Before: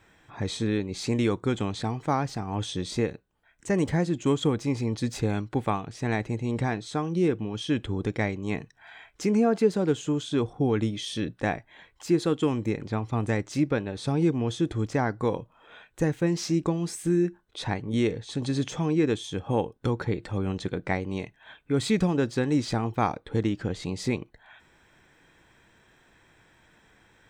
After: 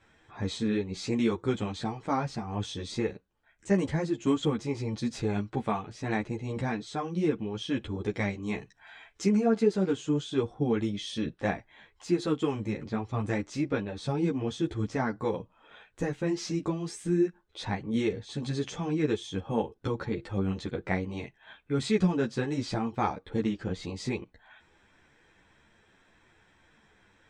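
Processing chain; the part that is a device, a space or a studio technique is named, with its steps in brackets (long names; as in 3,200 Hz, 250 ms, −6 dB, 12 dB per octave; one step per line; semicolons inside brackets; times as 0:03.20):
0:08.11–0:09.28: high-shelf EQ 5,300 Hz +6 dB
string-machine ensemble chorus (string-ensemble chorus; low-pass filter 7,900 Hz 12 dB per octave)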